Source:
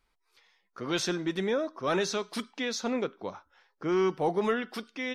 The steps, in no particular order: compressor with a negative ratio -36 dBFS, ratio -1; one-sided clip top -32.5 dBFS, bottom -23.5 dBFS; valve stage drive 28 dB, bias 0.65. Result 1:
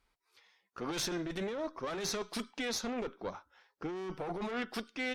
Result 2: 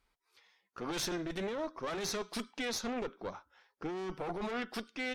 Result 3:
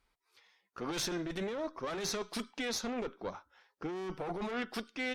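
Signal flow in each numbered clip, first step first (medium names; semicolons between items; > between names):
valve stage > compressor with a negative ratio > one-sided clip; one-sided clip > valve stage > compressor with a negative ratio; valve stage > one-sided clip > compressor with a negative ratio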